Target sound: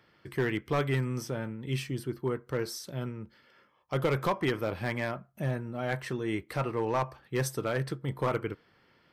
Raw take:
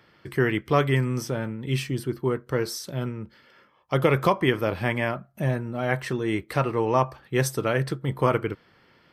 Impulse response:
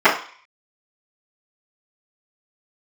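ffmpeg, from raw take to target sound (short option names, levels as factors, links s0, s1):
-filter_complex "[0:a]asoftclip=type=hard:threshold=0.178,asplit=2[s0][s1];[1:a]atrim=start_sample=2205,afade=t=out:st=0.22:d=0.01,atrim=end_sample=10143[s2];[s1][s2]afir=irnorm=-1:irlink=0,volume=0.00335[s3];[s0][s3]amix=inputs=2:normalize=0,volume=0.501"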